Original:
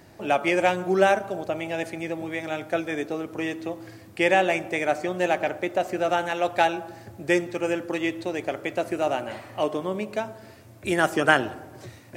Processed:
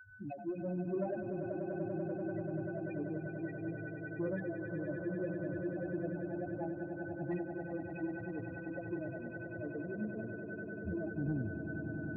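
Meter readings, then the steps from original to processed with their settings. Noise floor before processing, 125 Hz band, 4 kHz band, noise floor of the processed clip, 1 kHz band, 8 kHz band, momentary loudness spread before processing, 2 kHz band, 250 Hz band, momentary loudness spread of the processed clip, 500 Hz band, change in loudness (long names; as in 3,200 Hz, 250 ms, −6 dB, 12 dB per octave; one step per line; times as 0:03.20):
−48 dBFS, −3.0 dB, below −40 dB, −45 dBFS, −24.5 dB, below −40 dB, 14 LU, −18.5 dB, −8.5 dB, 5 LU, −15.0 dB, −14.5 dB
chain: peak hold with a decay on every bin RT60 0.39 s
noise gate −37 dBFS, range −9 dB
guitar amp tone stack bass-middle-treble 10-0-1
in parallel at −12 dB: bit-depth reduction 6 bits, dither none
on the sum: steady tone 1,500 Hz −59 dBFS
all-pass phaser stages 6, 1.7 Hz, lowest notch 110–2,700 Hz
spectral peaks only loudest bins 4
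soft clipping −39.5 dBFS, distortion −22 dB
on a send: echo that builds up and dies away 97 ms, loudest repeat 8, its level −11 dB
on the sum: every ending faded ahead of time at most 160 dB per second
level +12 dB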